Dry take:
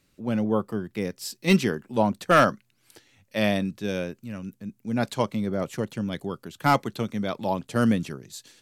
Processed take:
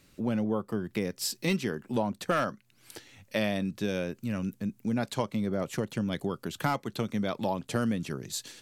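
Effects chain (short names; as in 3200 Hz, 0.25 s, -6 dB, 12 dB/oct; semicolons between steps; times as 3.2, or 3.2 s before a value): compressor 4:1, threshold -34 dBFS, peak gain reduction 17 dB; gain +6 dB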